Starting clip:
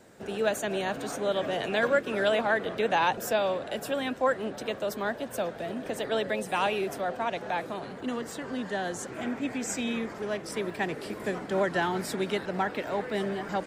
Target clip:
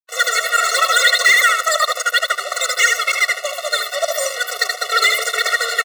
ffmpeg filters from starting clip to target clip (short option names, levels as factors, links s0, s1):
-filter_complex "[0:a]equalizer=f=500:t=o:w=0.33:g=-8,equalizer=f=800:t=o:w=0.33:g=8,equalizer=f=1600:t=o:w=0.33:g=6,equalizer=f=3150:t=o:w=0.33:g=8,equalizer=f=5000:t=o:w=0.33:g=3,equalizer=f=8000:t=o:w=0.33:g=-9,asplit=2[s0][s1];[s1]adelay=180,lowpass=f=4800:p=1,volume=0.562,asplit=2[s2][s3];[s3]adelay=180,lowpass=f=4800:p=1,volume=0.24,asplit=2[s4][s5];[s5]adelay=180,lowpass=f=4800:p=1,volume=0.24[s6];[s0][s2][s4][s6]amix=inputs=4:normalize=0,areverse,acompressor=mode=upward:threshold=0.0141:ratio=2.5,areverse,aeval=exprs='sgn(val(0))*max(abs(val(0))-0.015,0)':c=same,asetrate=103194,aresample=44100,lowshelf=f=510:t=q:w=1.5:g=-13,apsyclip=12.6,afftfilt=real='re*eq(mod(floor(b*sr/1024/370),2),1)':imag='im*eq(mod(floor(b*sr/1024/370),2),1)':win_size=1024:overlap=0.75,volume=0.562"